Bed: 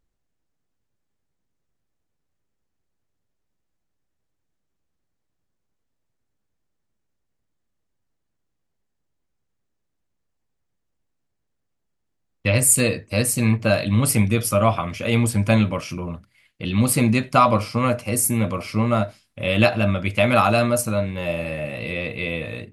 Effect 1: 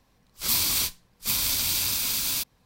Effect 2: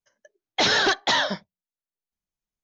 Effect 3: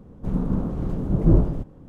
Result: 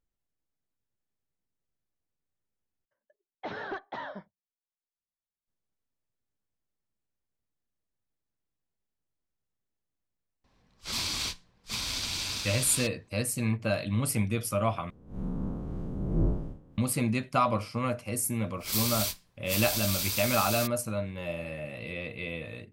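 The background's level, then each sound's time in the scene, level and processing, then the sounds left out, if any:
bed -10 dB
2.85 replace with 2 -13 dB + LPF 1400 Hz
10.44 add 1 -3 dB + LPF 5500 Hz
14.9 replace with 3 -8 dB + time blur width 0.105 s
18.24 add 1 -6 dB

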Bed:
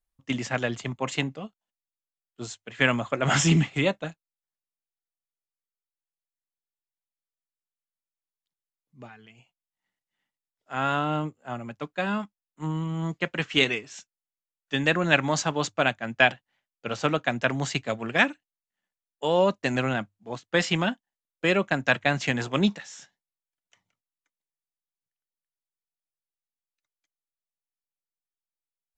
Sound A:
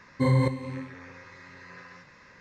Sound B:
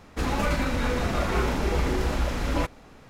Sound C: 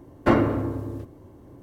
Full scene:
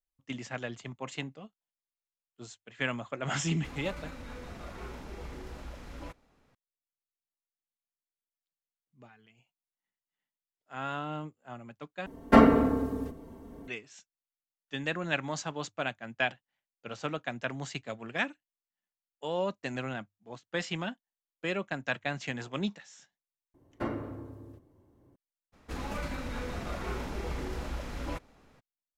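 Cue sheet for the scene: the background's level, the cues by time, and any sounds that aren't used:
bed -10 dB
3.46 add B -18 dB
12.06 replace with C -1 dB + comb 4.4 ms, depth 99%
23.54 add C -15.5 dB
25.52 add B -11 dB, fades 0.02 s
not used: A

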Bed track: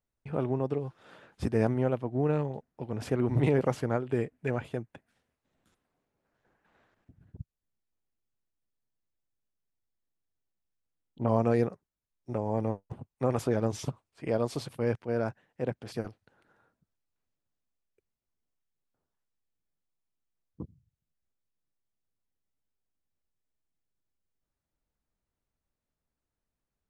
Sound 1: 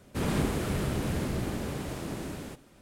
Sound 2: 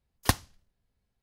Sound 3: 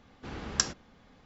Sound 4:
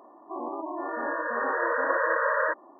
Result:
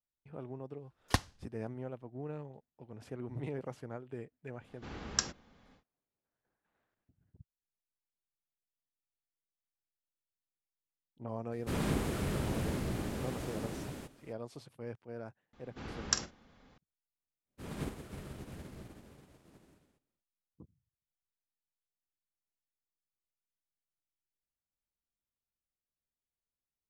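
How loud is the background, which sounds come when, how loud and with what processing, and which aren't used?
bed track -14.5 dB
0.85 add 2 -5 dB + Bessel low-pass 7000 Hz
4.59 add 3 -4.5 dB, fades 0.10 s
11.52 add 1 -4.5 dB
15.53 add 3 -4 dB + doubler 47 ms -12.5 dB
17.43 add 1 -9 dB, fades 0.10 s + upward expander 2.5:1, over -41 dBFS
not used: 4

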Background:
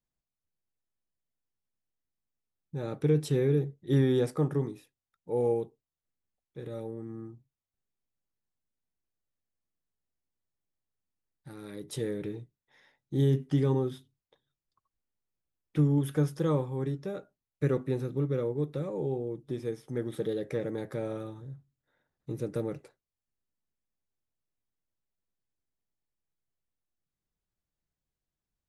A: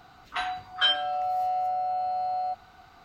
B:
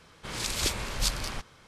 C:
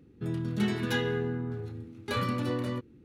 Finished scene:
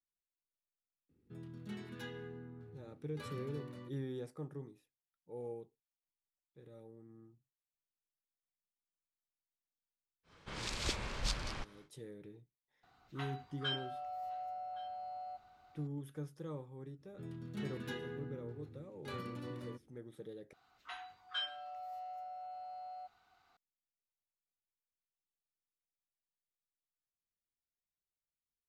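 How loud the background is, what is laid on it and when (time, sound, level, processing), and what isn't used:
background -17 dB
1.09 add C -17.5 dB
10.23 add B -6.5 dB, fades 0.10 s + air absorption 75 m
12.83 add A -15.5 dB + echo 1.117 s -22.5 dB
16.97 add C -14.5 dB, fades 0.05 s
20.53 replace with A -15.5 dB + low shelf 470 Hz -10 dB

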